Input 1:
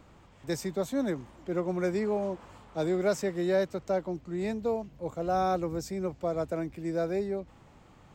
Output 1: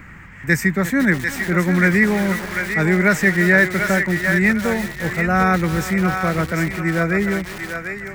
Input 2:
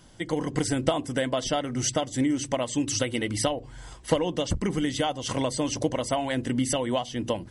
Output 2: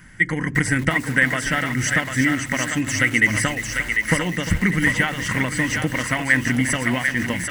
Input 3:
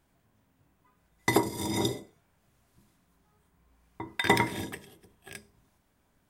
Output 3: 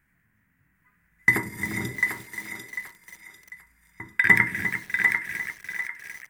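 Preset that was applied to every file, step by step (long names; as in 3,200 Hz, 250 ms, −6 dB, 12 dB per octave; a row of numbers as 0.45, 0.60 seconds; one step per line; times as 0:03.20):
drawn EQ curve 120 Hz 0 dB, 180 Hz +3 dB, 300 Hz −5 dB, 420 Hz −9 dB, 650 Hz −12 dB, 1,100 Hz −3 dB, 1,900 Hz +15 dB, 3,500 Hz −11 dB, 15,000 Hz +2 dB
on a send: feedback echo with a high-pass in the loop 746 ms, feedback 34%, high-pass 790 Hz, level −4 dB
on the sum: feedback echo at a low word length 351 ms, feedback 55%, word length 6 bits, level −11 dB
normalise the peak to −3 dBFS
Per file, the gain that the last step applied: +15.0, +7.0, −0.5 decibels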